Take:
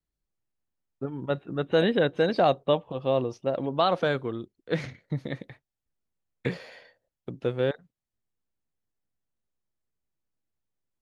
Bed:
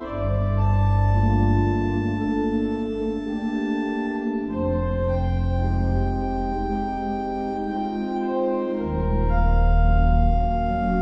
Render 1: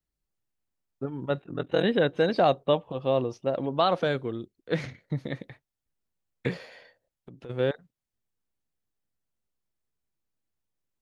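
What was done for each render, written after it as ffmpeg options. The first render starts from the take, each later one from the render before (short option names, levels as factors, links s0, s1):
-filter_complex "[0:a]asettb=1/sr,asplit=3[s0][s1][s2];[s0]atrim=end=1.404[s3];[s1]atrim=start=1.4:end=1.85,asetpts=PTS-STARTPTS,afade=t=in:d=0.004:c=qsin,afade=t=out:st=0.446:d=0.004:c=qsin,aeval=exprs='val(0)*sin(2*PI*21*n/s)':c=same[s4];[s2]atrim=start=1.846[s5];[s3][s4]acrossfade=d=0.004:c1=hsin:c2=qsin[s6];[s6][s5]acrossfade=d=0.004:c1=qsin:c2=hsin,asettb=1/sr,asplit=3[s7][s8][s9];[s7]atrim=end=4.034[s10];[s8]atrim=start=4.03:end=4.57,asetpts=PTS-STARTPTS,afade=t=in:d=0.004:c=qsin,afade=t=out:st=0.536:d=0.004:c=qsin,equalizer=f=1100:w=1.5:g=-5[s11];[s9]atrim=start=4.566[s12];[s10][s11]acrossfade=d=0.004:c1=hsin:c2=qsin[s13];[s13][s12]acrossfade=d=0.004:c1=qsin:c2=hsin,asplit=3[s14][s15][s16];[s14]afade=t=out:st=6.65:d=0.02[s17];[s15]acompressor=threshold=0.00562:ratio=3:attack=3.2:release=140:knee=1:detection=peak,afade=t=in:st=6.65:d=0.02,afade=t=out:st=7.49:d=0.02[s18];[s16]afade=t=in:st=7.49:d=0.02[s19];[s17][s18][s19]amix=inputs=3:normalize=0"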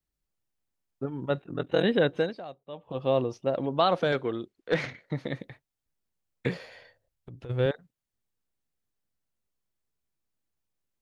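-filter_complex "[0:a]asettb=1/sr,asplit=3[s0][s1][s2];[s0]atrim=end=4.124[s3];[s1]atrim=start=4.12:end=5.29,asetpts=PTS-STARTPTS,afade=t=in:d=0.004:c=qsin,afade=t=out:st=1.166:d=0.004:c=qsin,asplit=2[s4][s5];[s5]highpass=f=720:p=1,volume=4.47,asoftclip=type=tanh:threshold=0.266[s6];[s4][s6]amix=inputs=2:normalize=0,lowpass=f=2800:p=1,volume=0.501[s7];[s2]atrim=start=5.286[s8];[s3][s7]acrossfade=d=0.004:c1=hsin:c2=qsin[s9];[s9][s8]acrossfade=d=0.004:c1=qsin:c2=hsin,asettb=1/sr,asplit=3[s10][s11][s12];[s10]atrim=end=6.644[s13];[s11]atrim=start=6.64:end=7.66,asetpts=PTS-STARTPTS,afade=t=in:d=0.004:c=qsin,afade=t=out:st=1.016:d=0.004:c=qsin,lowshelf=f=140:t=q:w=1.5:g=8[s14];[s12]atrim=start=7.656[s15];[s13][s14]acrossfade=d=0.004:c1=hsin:c2=qsin[s16];[s16][s15]acrossfade=d=0.004:c1=qsin:c2=hsin,asplit=3[s17][s18][s19];[s17]atrim=end=2.44,asetpts=PTS-STARTPTS,afade=t=out:st=2.17:d=0.27:c=qua:silence=0.1[s20];[s18]atrim=start=2.44:end=2.68,asetpts=PTS-STARTPTS,volume=0.1[s21];[s19]atrim=start=2.68,asetpts=PTS-STARTPTS,afade=t=in:d=0.27:c=qua:silence=0.1[s22];[s20][s21][s22]concat=n=3:v=0:a=1"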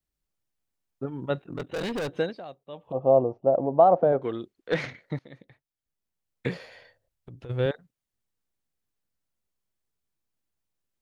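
-filter_complex "[0:a]asettb=1/sr,asplit=3[s0][s1][s2];[s0]atrim=end=1.444[s3];[s1]atrim=start=1.44:end=2.18,asetpts=PTS-STARTPTS,afade=t=in:d=0.004:c=qsin,afade=t=out:st=0.736:d=0.004:c=qsin,volume=25.1,asoftclip=hard,volume=0.0398[s4];[s2]atrim=start=2.176[s5];[s3][s4]acrossfade=d=0.004:c1=hsin:c2=qsin[s6];[s6][s5]acrossfade=d=0.004:c1=qsin:c2=hsin,asettb=1/sr,asplit=3[s7][s8][s9];[s7]atrim=end=2.924[s10];[s8]atrim=start=2.92:end=4.22,asetpts=PTS-STARTPTS,afade=t=in:d=0.004:c=qsin,afade=t=out:st=1.296:d=0.004:c=qsin,lowpass=f=720:t=q:w=2.8[s11];[s9]atrim=start=4.216[s12];[s10][s11]acrossfade=d=0.004:c1=hsin:c2=qsin[s13];[s13][s12]acrossfade=d=0.004:c1=qsin:c2=hsin,asplit=2[s14][s15];[s14]atrim=end=5.19,asetpts=PTS-STARTPTS,afade=t=out:st=5.186:d=0.004:c=hsin:silence=0.11885[s16];[s15]atrim=start=5.19,asetpts=PTS-STARTPTS,afade=t=in:d=1.35:silence=0.11885[s17];[s16][s17]concat=n=2:v=0:a=1"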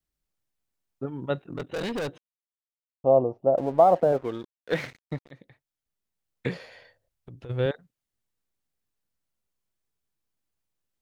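-filter_complex "[0:a]asettb=1/sr,asplit=3[s0][s1][s2];[s0]atrim=end=3.574[s3];[s1]atrim=start=3.57:end=5.31,asetpts=PTS-STARTPTS,afade=t=in:d=0.004:c=qsin,afade=t=out:st=1.736:d=0.004:c=qsin,aeval=exprs='sgn(val(0))*max(abs(val(0))-0.00531,0)':c=same[s4];[s2]atrim=start=5.306[s5];[s3][s4]acrossfade=d=0.004:c1=hsin:c2=qsin[s6];[s6][s5]acrossfade=d=0.004:c1=qsin:c2=hsin,asplit=3[s7][s8][s9];[s7]atrim=end=2.18,asetpts=PTS-STARTPTS,afade=t=out:st=2.176:d=0.004:c=hsin[s10];[s8]atrim=start=2.18:end=3.04,asetpts=PTS-STARTPTS,volume=0[s11];[s9]atrim=start=3.04,asetpts=PTS-STARTPTS,afade=t=in:d=0.004:c=hsin[s12];[s10][s11][s12]concat=n=3:v=0:a=1"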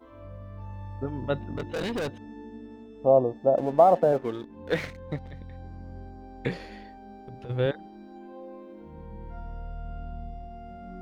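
-filter_complex "[1:a]volume=0.1[s0];[0:a][s0]amix=inputs=2:normalize=0"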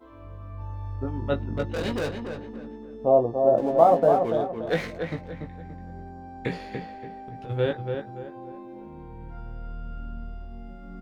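-filter_complex "[0:a]asplit=2[s0][s1];[s1]adelay=18,volume=0.531[s2];[s0][s2]amix=inputs=2:normalize=0,asplit=2[s3][s4];[s4]adelay=287,lowpass=f=2400:p=1,volume=0.531,asplit=2[s5][s6];[s6]adelay=287,lowpass=f=2400:p=1,volume=0.36,asplit=2[s7][s8];[s8]adelay=287,lowpass=f=2400:p=1,volume=0.36,asplit=2[s9][s10];[s10]adelay=287,lowpass=f=2400:p=1,volume=0.36[s11];[s5][s7][s9][s11]amix=inputs=4:normalize=0[s12];[s3][s12]amix=inputs=2:normalize=0"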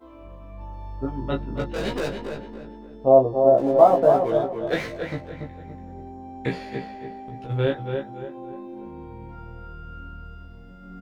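-filter_complex "[0:a]asplit=2[s0][s1];[s1]adelay=15,volume=0.794[s2];[s0][s2]amix=inputs=2:normalize=0,aecho=1:1:267:0.168"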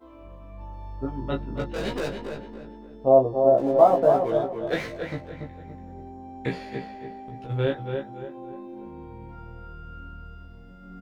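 -af "volume=0.794"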